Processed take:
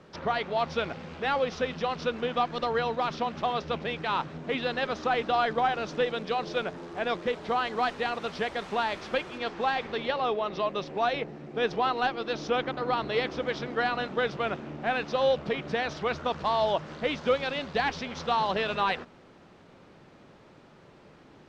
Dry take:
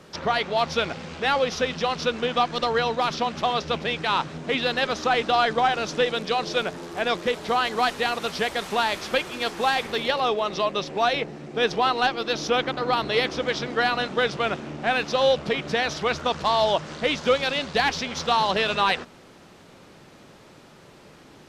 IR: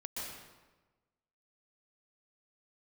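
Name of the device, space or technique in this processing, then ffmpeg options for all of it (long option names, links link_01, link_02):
through cloth: -filter_complex "[0:a]asettb=1/sr,asplit=3[link_01][link_02][link_03];[link_01]atrim=end=9.384[link_04];[link_02]atrim=start=9.38:end=10.65,asetpts=PTS-STARTPTS,afade=type=in:duration=0.004:curve=qsin,afade=type=out:start_time=1.266:duration=0.004:curve=qsin,lowpass=6000[link_05];[link_03]atrim=start=10.646[link_06];[link_04][link_05]acrossfade=duration=0.004:curve1=hsin:curve2=qsin[link_07];[link_07][link_06]acrossfade=duration=0.004:curve1=qsin:curve2=hsin,lowpass=7900,highshelf=frequency=3800:gain=-11,volume=-4dB"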